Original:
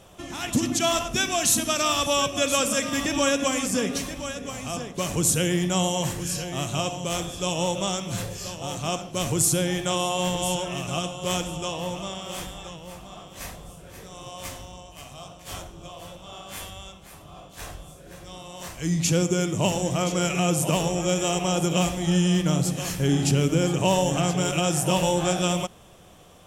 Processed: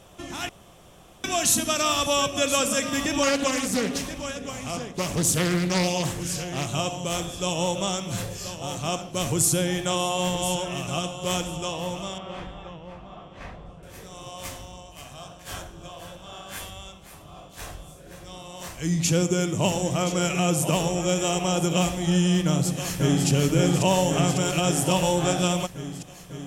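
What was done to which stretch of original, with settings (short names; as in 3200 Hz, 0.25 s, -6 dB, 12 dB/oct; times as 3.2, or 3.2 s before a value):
0.49–1.24 room tone
3.23–6.69 Doppler distortion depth 0.42 ms
12.18–13.83 LPF 2300 Hz
15.04–16.59 bell 1600 Hz +10 dB 0.2 oct
22.45–23.27 echo throw 0.55 s, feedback 75%, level -3.5 dB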